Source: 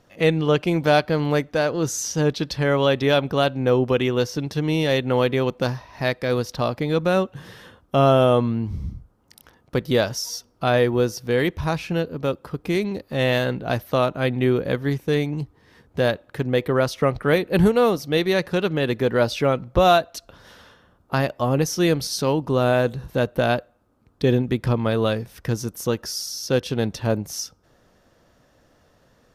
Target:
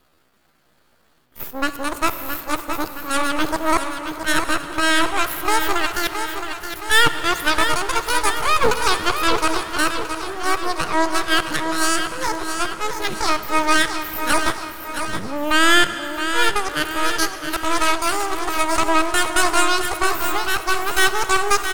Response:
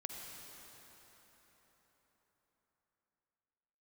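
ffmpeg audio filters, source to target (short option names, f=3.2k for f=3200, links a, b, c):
-filter_complex "[0:a]areverse,highshelf=f=9.3k:g=9.5,asetrate=83250,aresample=44100,atempo=0.529732,aeval=exprs='0.631*(cos(1*acos(clip(val(0)/0.631,-1,1)))-cos(1*PI/2))+0.158*(cos(6*acos(clip(val(0)/0.631,-1,1)))-cos(6*PI/2))+0.0501*(cos(8*acos(clip(val(0)/0.631,-1,1)))-cos(8*PI/2))':c=same,aeval=exprs='max(val(0),0)':c=same,aecho=1:1:903|1806|2709|3612|4515|5418:0.398|0.211|0.112|0.0593|0.0314|0.0166,asplit=2[a][b];[1:a]atrim=start_sample=2205[c];[b][c]afir=irnorm=-1:irlink=0,volume=-3.5dB[d];[a][d]amix=inputs=2:normalize=0,asetrate=59535,aresample=44100,volume=-2.5dB"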